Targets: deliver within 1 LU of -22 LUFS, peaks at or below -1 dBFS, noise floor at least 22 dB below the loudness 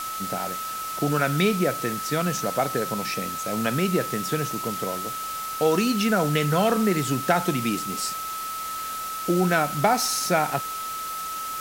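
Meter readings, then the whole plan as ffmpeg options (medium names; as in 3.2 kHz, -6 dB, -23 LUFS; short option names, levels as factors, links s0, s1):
steady tone 1.3 kHz; tone level -30 dBFS; noise floor -32 dBFS; noise floor target -47 dBFS; loudness -25.0 LUFS; peak level -7.0 dBFS; loudness target -22.0 LUFS
-> -af "bandreject=f=1300:w=30"
-af "afftdn=nr=15:nf=-32"
-af "volume=1.41"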